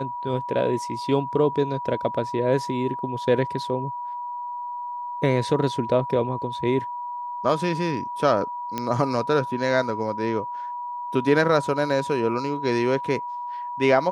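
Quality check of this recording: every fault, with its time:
whine 970 Hz -29 dBFS
8.78 s: pop -12 dBFS

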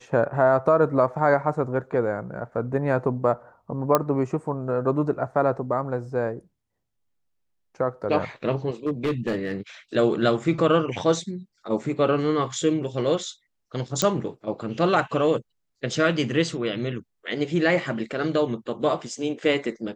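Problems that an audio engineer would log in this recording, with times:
3.95 s: pop -5 dBFS
8.86–9.54 s: clipped -20 dBFS
14.02 s: pop -7 dBFS

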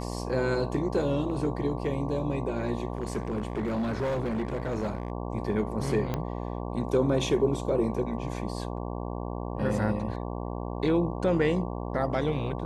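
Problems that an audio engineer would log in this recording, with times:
buzz 60 Hz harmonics 19 -34 dBFS
2.97–5.12 s: clipped -25.5 dBFS
6.14 s: pop -16 dBFS

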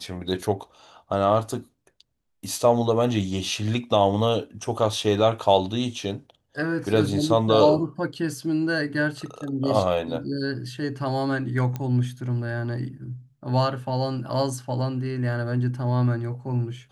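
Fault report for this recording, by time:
11.76 s: pop -17 dBFS

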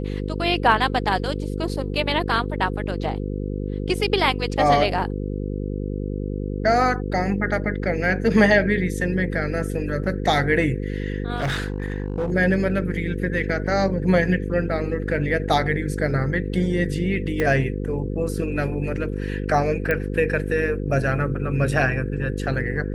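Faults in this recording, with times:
buzz 50 Hz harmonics 10 -27 dBFS
11.36–12.33 s: clipped -20 dBFS
17.40 s: pop -11 dBFS
19.91 s: pop -11 dBFS

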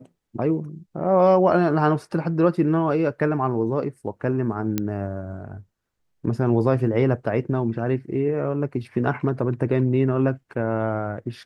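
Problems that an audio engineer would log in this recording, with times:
4.78 s: pop -9 dBFS

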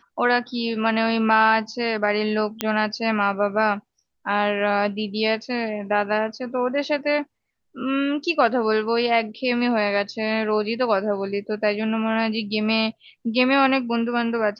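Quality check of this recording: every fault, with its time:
2.61 s: pop -6 dBFS

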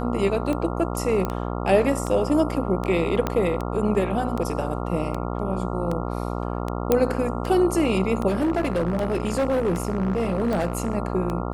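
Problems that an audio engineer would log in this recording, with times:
buzz 60 Hz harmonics 23 -28 dBFS
tick 78 rpm -16 dBFS
1.25 s: pop -13 dBFS
3.27 s: pop -10 dBFS
6.92 s: pop -6 dBFS
8.28–10.95 s: clipped -18.5 dBFS

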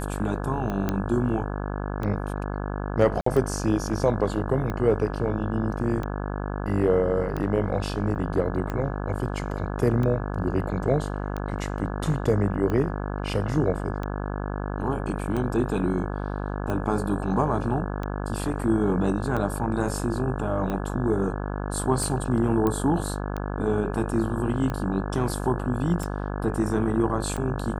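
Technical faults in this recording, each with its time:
buzz 50 Hz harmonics 34 -30 dBFS
tick 45 rpm -18 dBFS
0.89 s: pop -12 dBFS
3.21–3.26 s: dropout 54 ms
8.15–8.16 s: dropout 8.1 ms
22.67 s: pop -13 dBFS

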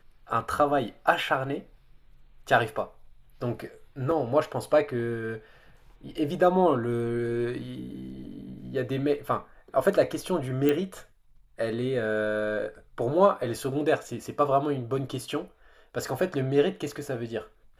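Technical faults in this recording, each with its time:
4.11 s: dropout 3.5 ms
10.69 s: pop -13 dBFS

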